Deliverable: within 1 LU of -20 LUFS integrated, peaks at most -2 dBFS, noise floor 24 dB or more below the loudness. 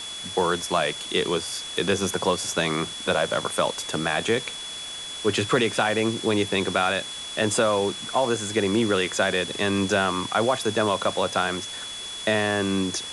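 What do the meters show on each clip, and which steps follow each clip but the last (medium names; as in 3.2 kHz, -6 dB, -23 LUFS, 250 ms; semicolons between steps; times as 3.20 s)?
steady tone 3.4 kHz; tone level -34 dBFS; noise floor -35 dBFS; noise floor target -49 dBFS; loudness -24.5 LUFS; peak level -9.5 dBFS; loudness target -20.0 LUFS
-> band-stop 3.4 kHz, Q 30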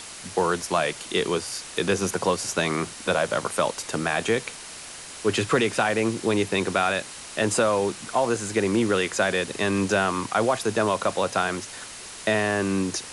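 steady tone not found; noise floor -40 dBFS; noise floor target -49 dBFS
-> noise reduction 9 dB, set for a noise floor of -40 dBFS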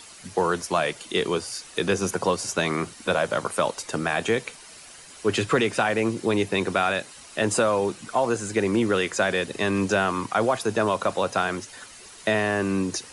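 noise floor -46 dBFS; noise floor target -49 dBFS
-> noise reduction 6 dB, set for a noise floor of -46 dBFS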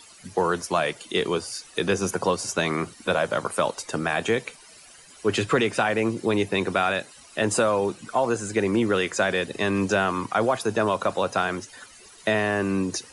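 noise floor -50 dBFS; loudness -25.0 LUFS; peak level -10.0 dBFS; loudness target -20.0 LUFS
-> trim +5 dB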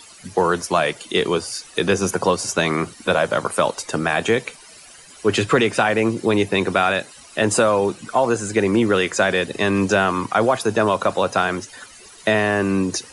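loudness -20.0 LUFS; peak level -5.0 dBFS; noise floor -45 dBFS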